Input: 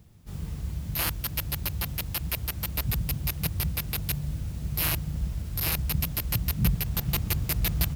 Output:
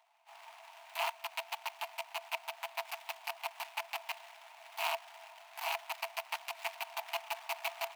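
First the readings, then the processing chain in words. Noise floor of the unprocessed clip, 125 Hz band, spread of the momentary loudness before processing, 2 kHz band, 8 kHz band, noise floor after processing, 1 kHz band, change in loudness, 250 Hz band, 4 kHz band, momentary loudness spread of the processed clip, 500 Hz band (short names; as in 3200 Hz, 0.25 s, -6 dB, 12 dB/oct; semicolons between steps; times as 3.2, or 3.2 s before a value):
-38 dBFS, under -40 dB, 7 LU, -2.5 dB, -14.5 dB, -57 dBFS, +3.5 dB, -10.5 dB, under -40 dB, -6.5 dB, 16 LU, -0.5 dB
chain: median filter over 25 samples; rippled Chebyshev high-pass 650 Hz, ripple 9 dB; gain +11.5 dB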